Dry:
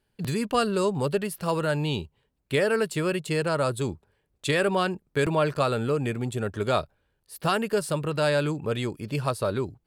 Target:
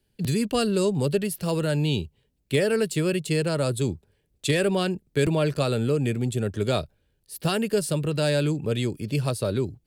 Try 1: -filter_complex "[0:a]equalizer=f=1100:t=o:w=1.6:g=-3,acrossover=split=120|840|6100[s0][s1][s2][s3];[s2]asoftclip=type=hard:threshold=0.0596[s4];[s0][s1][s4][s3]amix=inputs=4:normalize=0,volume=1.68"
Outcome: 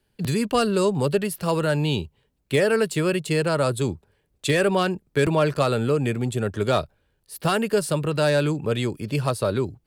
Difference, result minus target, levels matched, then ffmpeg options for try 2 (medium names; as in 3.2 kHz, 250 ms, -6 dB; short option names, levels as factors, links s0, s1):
1 kHz band +5.0 dB
-filter_complex "[0:a]equalizer=f=1100:t=o:w=1.6:g=-12,acrossover=split=120|840|6100[s0][s1][s2][s3];[s2]asoftclip=type=hard:threshold=0.0596[s4];[s0][s1][s4][s3]amix=inputs=4:normalize=0,volume=1.68"